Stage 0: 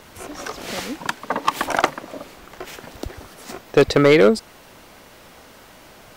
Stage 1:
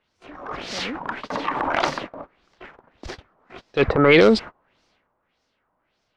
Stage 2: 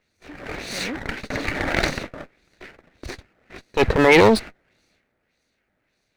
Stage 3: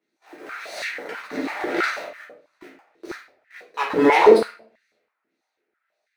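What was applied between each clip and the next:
gate -33 dBFS, range -27 dB; LFO low-pass sine 1.7 Hz 1000–5500 Hz; transient shaper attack -9 dB, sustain +7 dB; gain -1 dB
minimum comb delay 0.48 ms; gain +2 dB
in parallel at -9.5 dB: requantised 6-bit, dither none; on the sum: shoebox room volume 50 m³, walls mixed, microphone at 1.2 m; stepped high-pass 6.1 Hz 290–1800 Hz; gain -14.5 dB

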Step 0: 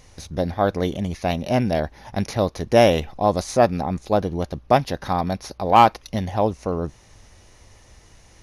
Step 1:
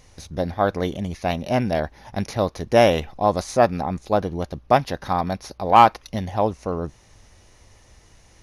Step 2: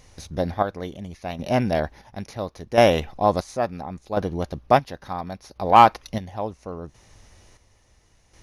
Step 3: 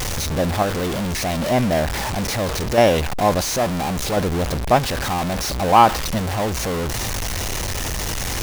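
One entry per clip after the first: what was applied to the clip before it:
dynamic EQ 1300 Hz, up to +4 dB, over -29 dBFS, Q 0.74; gain -2 dB
chopper 0.72 Hz, depth 60%, duty 45%
zero-crossing step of -17.5 dBFS; gain -1 dB

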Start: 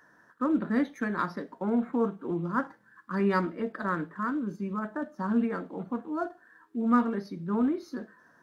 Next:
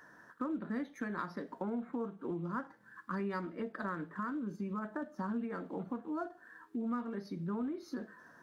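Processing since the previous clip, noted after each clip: compressor 4:1, threshold -39 dBFS, peak gain reduction 17.5 dB; gain +2 dB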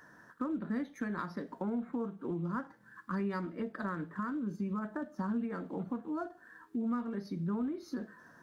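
tone controls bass +5 dB, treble +2 dB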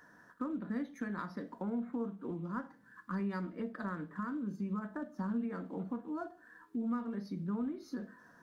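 reverb, pre-delay 4 ms, DRR 12.5 dB; gain -3 dB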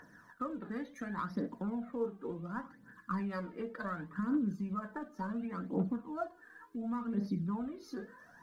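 phaser 0.69 Hz, delay 2.6 ms, feedback 62%

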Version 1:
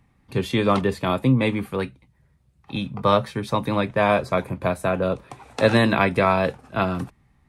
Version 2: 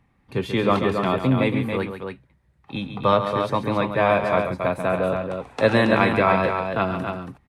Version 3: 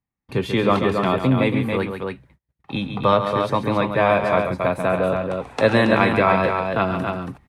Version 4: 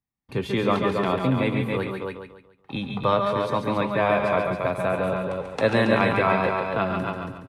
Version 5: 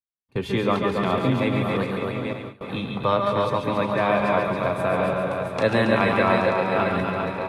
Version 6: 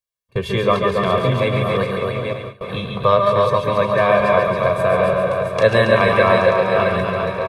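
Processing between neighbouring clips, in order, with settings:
tone controls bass -3 dB, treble -7 dB; loudspeakers at several distances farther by 47 m -9 dB, 95 m -6 dB
in parallel at -0.5 dB: compressor, threshold -30 dBFS, peak gain reduction 16.5 dB; on the sum: gate -51 dBFS, range -30 dB
feedback echo 0.142 s, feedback 36%, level -7.5 dB; gain -4.5 dB
regenerating reverse delay 0.467 s, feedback 44%, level -6 dB; diffused feedback echo 0.499 s, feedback 61%, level -16 dB; gate with hold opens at -24 dBFS
comb 1.8 ms, depth 72%; gain +3.5 dB

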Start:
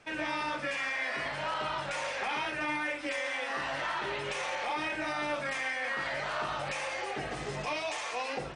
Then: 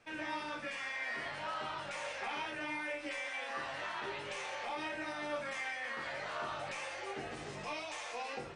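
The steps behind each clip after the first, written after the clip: resonator bank D#2 major, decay 0.21 s; gain +3 dB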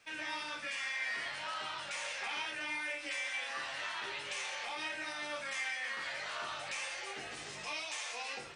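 tilt shelf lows -7.5 dB, about 1400 Hz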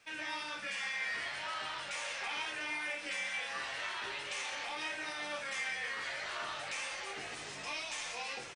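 frequency-shifting echo 0.499 s, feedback 49%, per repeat -110 Hz, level -12 dB

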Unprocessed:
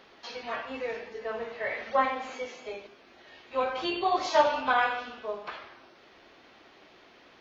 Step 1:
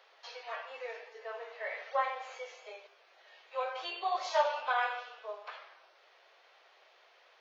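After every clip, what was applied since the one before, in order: steep high-pass 480 Hz 36 dB/oct; gain -6 dB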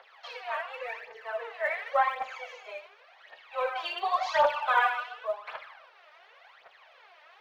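three-band isolator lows -15 dB, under 540 Hz, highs -12 dB, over 3200 Hz; phaser 0.9 Hz, delay 3.4 ms, feedback 69%; gain +6 dB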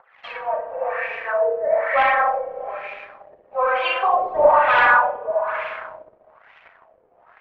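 spring tank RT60 2 s, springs 32/58 ms, chirp 35 ms, DRR -1 dB; sample leveller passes 2; LFO low-pass sine 1.1 Hz 440–2500 Hz; gain -1.5 dB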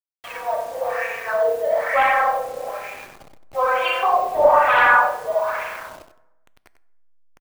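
level-crossing sampler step -37 dBFS; echo 94 ms -11 dB; plate-style reverb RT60 1.1 s, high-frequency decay 0.55×, DRR 16.5 dB

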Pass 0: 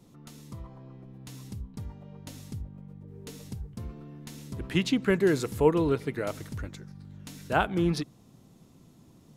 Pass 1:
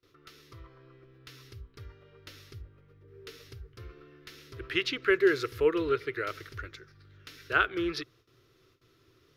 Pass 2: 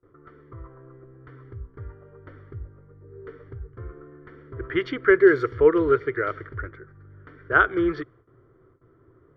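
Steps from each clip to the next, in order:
gate with hold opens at -47 dBFS; EQ curve 120 Hz 0 dB, 200 Hz -21 dB, 380 Hz +9 dB, 840 Hz -10 dB, 1300 Hz +13 dB, 5400 Hz +7 dB, 7700 Hz -9 dB, 14000 Hz +2 dB; gain -7 dB
low-pass opened by the level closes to 1300 Hz, open at -22.5 dBFS; polynomial smoothing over 41 samples; gain +8.5 dB

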